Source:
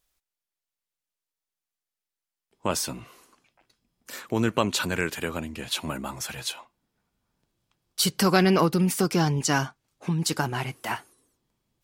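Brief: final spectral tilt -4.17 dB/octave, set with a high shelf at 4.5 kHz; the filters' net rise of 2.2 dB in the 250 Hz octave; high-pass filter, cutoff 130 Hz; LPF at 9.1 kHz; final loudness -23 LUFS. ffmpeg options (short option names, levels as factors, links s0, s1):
-af "highpass=130,lowpass=9100,equalizer=f=250:t=o:g=4.5,highshelf=f=4500:g=5,volume=1.19"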